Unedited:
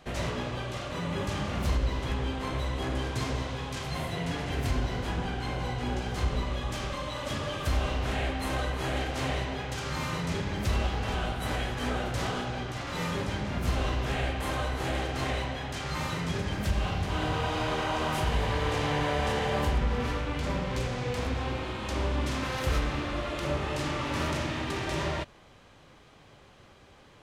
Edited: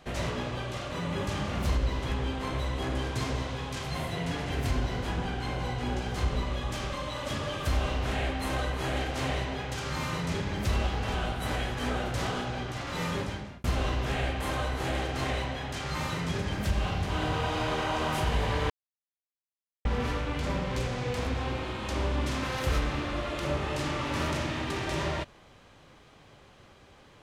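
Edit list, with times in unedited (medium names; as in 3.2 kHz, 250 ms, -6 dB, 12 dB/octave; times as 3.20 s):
13.18–13.64 s: fade out
18.70–19.85 s: mute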